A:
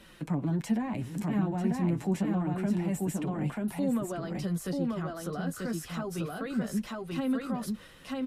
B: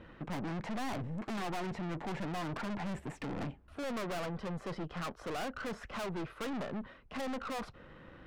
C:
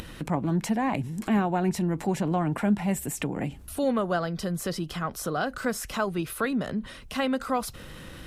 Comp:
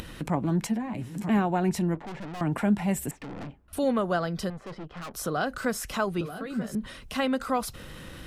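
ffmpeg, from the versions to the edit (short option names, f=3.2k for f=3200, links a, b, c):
-filter_complex "[0:a]asplit=2[a][b];[1:a]asplit=3[c][d][e];[2:a]asplit=6[f][g][h][i][j][k];[f]atrim=end=0.672[l];[a]atrim=start=0.668:end=1.292[m];[g]atrim=start=1.288:end=1.952[n];[c]atrim=start=1.948:end=2.412[o];[h]atrim=start=2.408:end=3.112[p];[d]atrim=start=3.108:end=3.732[q];[i]atrim=start=3.728:end=4.502[r];[e]atrim=start=4.498:end=5.142[s];[j]atrim=start=5.138:end=6.212[t];[b]atrim=start=6.208:end=6.752[u];[k]atrim=start=6.748[v];[l][m]acrossfade=d=0.004:c1=hsin:c2=hsin[w];[w][n]acrossfade=d=0.004:c1=hsin:c2=hsin[x];[x][o]acrossfade=d=0.004:c1=hsin:c2=hsin[y];[y][p]acrossfade=d=0.004:c1=hsin:c2=hsin[z];[z][q]acrossfade=d=0.004:c1=hsin:c2=hsin[aa];[aa][r]acrossfade=d=0.004:c1=hsin:c2=hsin[ab];[ab][s]acrossfade=d=0.004:c1=hsin:c2=hsin[ac];[ac][t]acrossfade=d=0.004:c1=hsin:c2=hsin[ad];[ad][u]acrossfade=d=0.004:c1=hsin:c2=hsin[ae];[ae][v]acrossfade=d=0.004:c1=hsin:c2=hsin"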